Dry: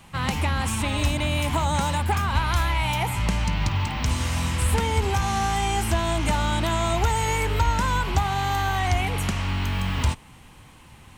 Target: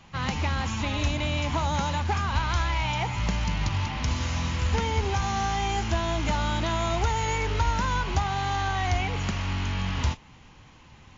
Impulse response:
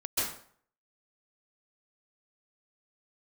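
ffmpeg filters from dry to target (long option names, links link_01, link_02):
-af "acontrast=24,acrusher=bits=4:mode=log:mix=0:aa=0.000001,volume=-7.5dB" -ar 16000 -c:a libmp3lame -b:a 40k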